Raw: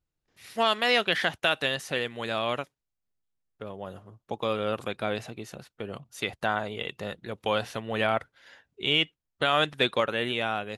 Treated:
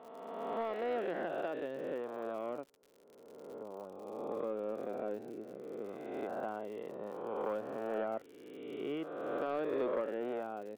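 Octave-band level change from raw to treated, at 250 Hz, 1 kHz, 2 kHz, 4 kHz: -6.5 dB, -11.5 dB, -20.0 dB, under -25 dB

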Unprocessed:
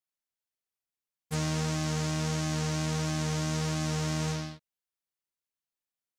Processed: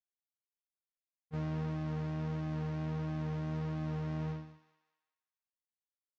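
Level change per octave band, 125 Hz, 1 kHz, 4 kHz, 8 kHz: -5.0 dB, -9.0 dB, -21.5 dB, under -30 dB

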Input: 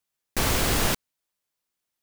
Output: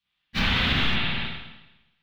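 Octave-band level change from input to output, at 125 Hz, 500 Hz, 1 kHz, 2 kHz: +1.5 dB, -7.5 dB, -1.0 dB, +5.5 dB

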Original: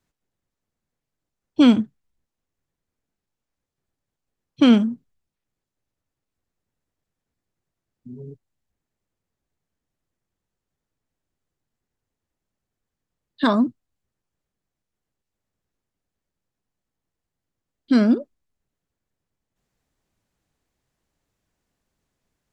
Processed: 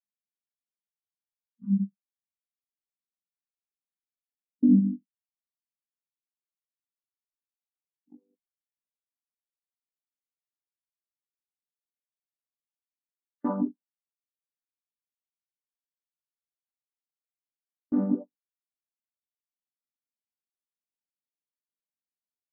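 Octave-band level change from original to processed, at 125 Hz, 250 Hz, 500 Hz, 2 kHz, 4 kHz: no reading, -8.0 dB, -14.0 dB, under -25 dB, under -40 dB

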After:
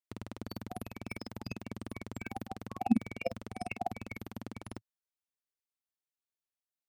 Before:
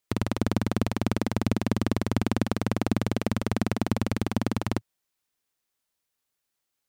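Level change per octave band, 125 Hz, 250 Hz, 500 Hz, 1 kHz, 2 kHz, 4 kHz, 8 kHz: -16.5 dB, -11.0 dB, -12.5 dB, -7.0 dB, -10.0 dB, -15.0 dB, -15.5 dB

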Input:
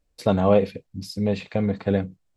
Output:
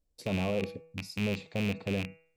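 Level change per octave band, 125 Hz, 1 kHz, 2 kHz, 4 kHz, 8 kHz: -8.5 dB, -14.0 dB, +0.5 dB, -2.0 dB, -3.0 dB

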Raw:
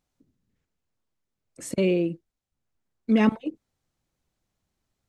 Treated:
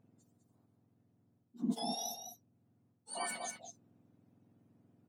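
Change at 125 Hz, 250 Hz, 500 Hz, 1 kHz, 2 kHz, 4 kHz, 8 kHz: -19.0 dB, -17.5 dB, -20.0 dB, -6.0 dB, -12.0 dB, -2.0 dB, +2.0 dB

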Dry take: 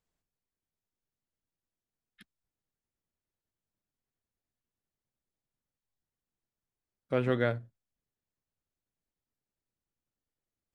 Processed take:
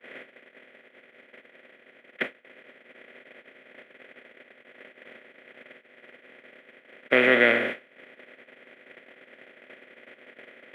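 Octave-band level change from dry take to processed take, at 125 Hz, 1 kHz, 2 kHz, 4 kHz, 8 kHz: -11.5 dB, +9.5 dB, +19.0 dB, +16.5 dB, no reading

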